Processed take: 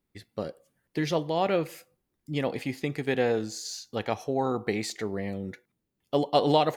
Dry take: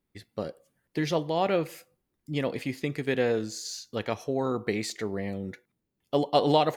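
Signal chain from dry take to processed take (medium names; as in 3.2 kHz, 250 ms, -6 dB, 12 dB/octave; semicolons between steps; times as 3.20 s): 2.41–5.02 s: peaking EQ 790 Hz +9 dB 0.21 oct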